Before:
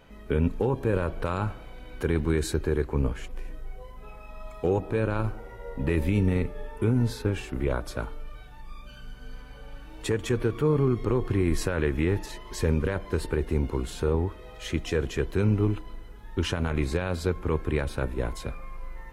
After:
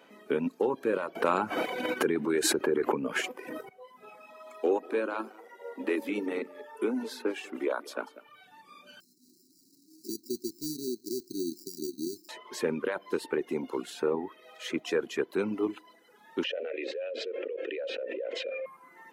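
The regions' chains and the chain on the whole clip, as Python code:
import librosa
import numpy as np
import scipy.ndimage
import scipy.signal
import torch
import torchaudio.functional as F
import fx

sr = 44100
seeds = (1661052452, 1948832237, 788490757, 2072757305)

y = fx.chain(x, sr, fx.peak_eq(hz=3900.0, db=-4.0, octaves=0.62),
    fx.env_flatten(amount_pct=100), at=(1.15, 3.69))
y = fx.chain(y, sr, fx.steep_highpass(hz=230.0, slope=36),
    fx.echo_single(ms=190, db=-12.5), at=(4.3, 8.29))
y = fx.chain(y, sr, fx.sample_hold(seeds[0], rate_hz=2100.0, jitter_pct=0),
    fx.brickwall_bandstop(low_hz=400.0, high_hz=3900.0),
    fx.low_shelf(hz=430.0, db=-7.0), at=(9.0, 12.29))
y = fx.chain(y, sr, fx.vowel_filter(vowel='e'),
    fx.cabinet(low_hz=300.0, low_slope=24, high_hz=6800.0, hz=(860.0, 1700.0, 3100.0), db=(-10, -8, 5)),
    fx.env_flatten(amount_pct=100), at=(16.44, 18.66))
y = scipy.signal.sosfilt(scipy.signal.butter(4, 240.0, 'highpass', fs=sr, output='sos'), y)
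y = fx.dereverb_blind(y, sr, rt60_s=0.91)
y = fx.dynamic_eq(y, sr, hz=8900.0, q=0.76, threshold_db=-55.0, ratio=4.0, max_db=-4)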